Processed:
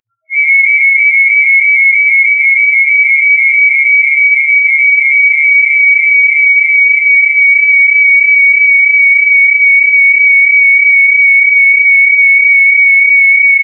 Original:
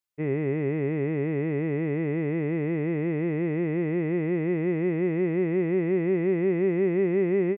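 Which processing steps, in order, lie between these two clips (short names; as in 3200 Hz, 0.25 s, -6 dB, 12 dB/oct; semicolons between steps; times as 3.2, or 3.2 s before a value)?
HPF 250 Hz 12 dB/oct; upward compressor, threshold -35 dBFS; loudest bins only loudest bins 2; time stretch by phase-locked vocoder 1.8×; feedback echo 70 ms, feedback 20%, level -8.5 dB; inverted band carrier 2600 Hz; maximiser +26.5 dB; gain -1 dB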